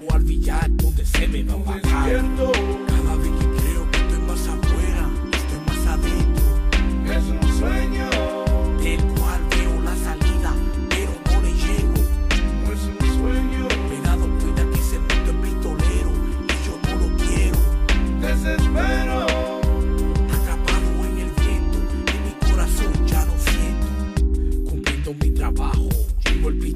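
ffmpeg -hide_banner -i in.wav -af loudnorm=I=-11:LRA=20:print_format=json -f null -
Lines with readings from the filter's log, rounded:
"input_i" : "-21.7",
"input_tp" : "-8.3",
"input_lra" : "1.3",
"input_thresh" : "-31.7",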